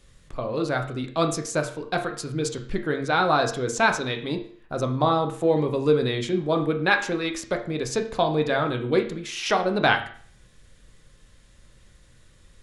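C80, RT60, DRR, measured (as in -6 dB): 13.5 dB, 0.50 s, 4.0 dB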